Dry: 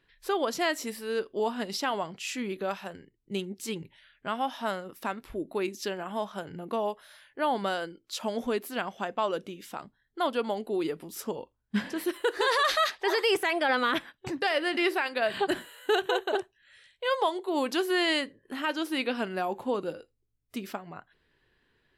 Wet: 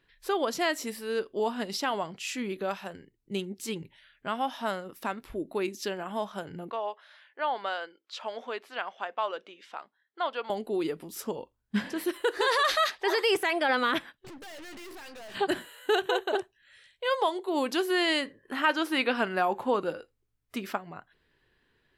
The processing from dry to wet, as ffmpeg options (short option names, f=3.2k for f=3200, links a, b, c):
-filter_complex "[0:a]asettb=1/sr,asplit=3[a][b][c];[a]atrim=end=6.704[d];[b]atrim=start=6.7:end=10.5,asetpts=PTS-STARTPTS,afade=t=in:d=0.004:c=qsin,afade=t=out:st=3.796:d=0.004:c=qsin,highpass=640,lowpass=3.7k[e];[c]atrim=start=10.496[f];[d][e]acrossfade=d=0.004:c1=hsin:c2=qsin[g];[g][f]acrossfade=d=0.004:c1=qsin:c2=hsin,asplit=3[h][i][j];[h]afade=t=out:st=14.15:d=0.02[k];[i]aeval=exprs='(tanh(158*val(0)+0.45)-tanh(0.45))/158':c=same,afade=t=in:st=14.15:d=0.02,afade=t=out:st=15.34:d=0.02[l];[j]afade=t=in:st=15.34:d=0.02[m];[k][l][m]amix=inputs=3:normalize=0,asettb=1/sr,asplit=3[n][o][p];[n]atrim=end=18.254[q];[o]atrim=start=18.25:end=20.78,asetpts=PTS-STARTPTS,afade=t=in:d=0.004:c=qsin,afade=t=out:st=2.526:d=0.004:c=qsin,equalizer=f=1.3k:w=0.61:g=7[r];[p]atrim=start=20.776[s];[q][r]acrossfade=d=0.004:c1=hsin:c2=qsin[t];[t][s]acrossfade=d=0.004:c1=qsin:c2=hsin"